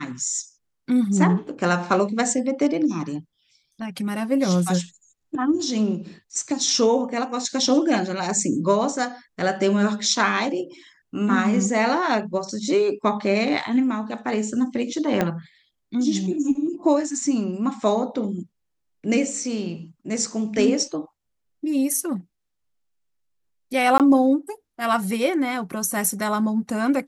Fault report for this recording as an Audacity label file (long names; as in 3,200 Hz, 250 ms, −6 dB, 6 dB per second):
15.210000	15.210000	click −8 dBFS
23.980000	24.000000	drop-out 18 ms